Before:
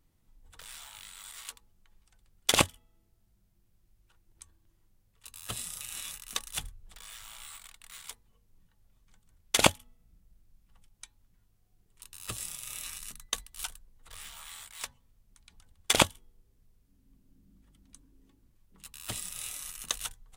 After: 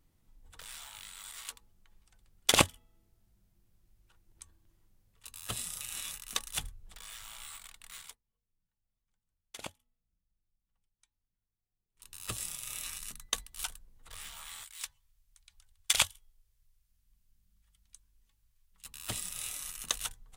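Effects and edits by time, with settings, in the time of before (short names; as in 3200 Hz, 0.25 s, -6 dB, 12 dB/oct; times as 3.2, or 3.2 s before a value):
8–12.11 dip -21.5 dB, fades 0.17 s
14.64–18.85 passive tone stack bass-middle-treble 10-0-10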